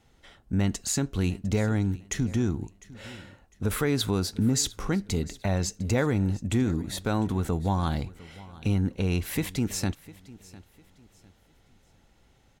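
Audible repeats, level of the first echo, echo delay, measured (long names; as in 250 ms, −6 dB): 2, −20.0 dB, 703 ms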